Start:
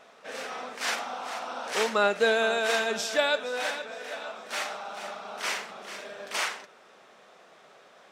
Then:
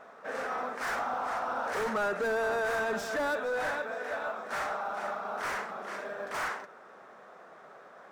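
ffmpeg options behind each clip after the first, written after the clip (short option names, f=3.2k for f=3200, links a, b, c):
-af "acrusher=bits=7:mode=log:mix=0:aa=0.000001,volume=31dB,asoftclip=hard,volume=-31dB,highshelf=f=2.1k:t=q:w=1.5:g=-10,volume=2.5dB"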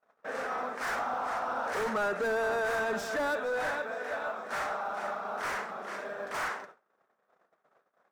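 -af "agate=range=-35dB:threshold=-48dB:ratio=16:detection=peak"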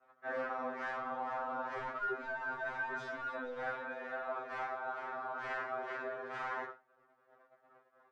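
-af "lowpass=2.6k,areverse,acompressor=threshold=-42dB:ratio=6,areverse,afftfilt=real='re*2.45*eq(mod(b,6),0)':imag='im*2.45*eq(mod(b,6),0)':win_size=2048:overlap=0.75,volume=7dB"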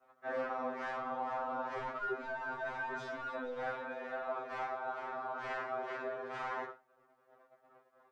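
-af "equalizer=f=1.6k:w=1.7:g=-4.5,volume=2dB"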